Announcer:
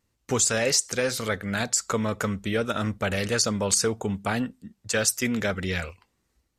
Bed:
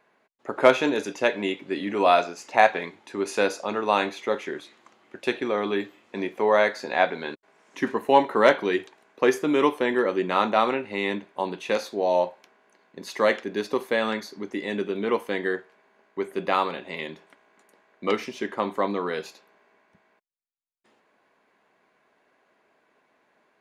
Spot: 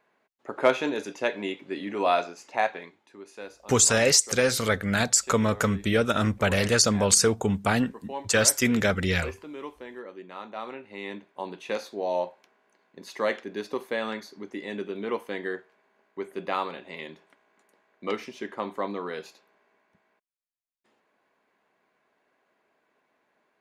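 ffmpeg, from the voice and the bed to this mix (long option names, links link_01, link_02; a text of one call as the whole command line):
ffmpeg -i stem1.wav -i stem2.wav -filter_complex "[0:a]adelay=3400,volume=3dB[link_01];[1:a]volume=8dB,afade=type=out:start_time=2.23:duration=0.99:silence=0.211349,afade=type=in:start_time=10.47:duration=1.24:silence=0.237137[link_02];[link_01][link_02]amix=inputs=2:normalize=0" out.wav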